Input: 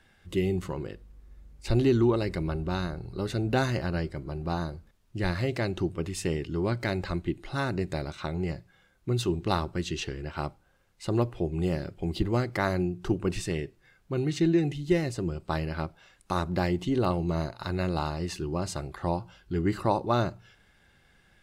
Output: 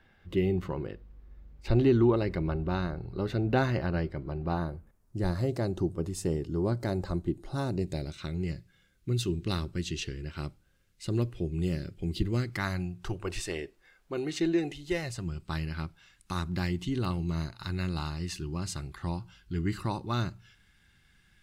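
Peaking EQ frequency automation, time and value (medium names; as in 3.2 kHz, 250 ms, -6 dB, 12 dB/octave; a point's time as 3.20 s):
peaking EQ -14.5 dB 1.5 oct
4.41 s 8.8 kHz
5.23 s 2.4 kHz
7.48 s 2.4 kHz
8.26 s 810 Hz
12.35 s 810 Hz
13.63 s 120 Hz
14.67 s 120 Hz
15.39 s 590 Hz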